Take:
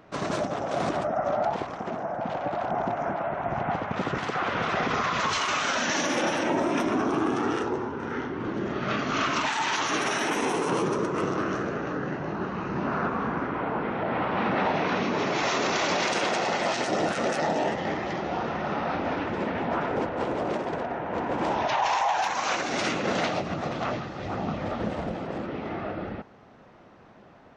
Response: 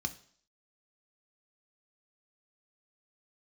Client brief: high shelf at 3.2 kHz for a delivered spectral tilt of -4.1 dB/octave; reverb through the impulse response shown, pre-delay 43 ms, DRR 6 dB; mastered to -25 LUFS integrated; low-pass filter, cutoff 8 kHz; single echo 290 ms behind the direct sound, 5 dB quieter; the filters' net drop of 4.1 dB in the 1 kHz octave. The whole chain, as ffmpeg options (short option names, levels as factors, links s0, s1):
-filter_complex "[0:a]lowpass=8000,equalizer=f=1000:t=o:g=-6,highshelf=f=3200:g=4.5,aecho=1:1:290:0.562,asplit=2[s0][s1];[1:a]atrim=start_sample=2205,adelay=43[s2];[s1][s2]afir=irnorm=-1:irlink=0,volume=0.422[s3];[s0][s3]amix=inputs=2:normalize=0,volume=1.19"